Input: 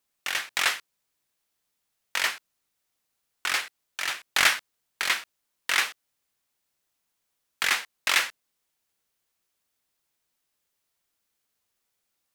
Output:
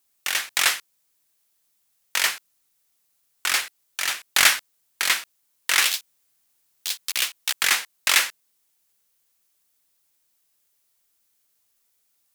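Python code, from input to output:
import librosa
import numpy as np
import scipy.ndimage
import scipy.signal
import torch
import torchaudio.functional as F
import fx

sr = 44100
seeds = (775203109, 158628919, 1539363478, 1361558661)

y = fx.high_shelf(x, sr, hz=5300.0, db=10.0)
y = fx.echo_pitch(y, sr, ms=94, semitones=6, count=2, db_per_echo=-3.0, at=(5.72, 8.14))
y = y * librosa.db_to_amplitude(1.5)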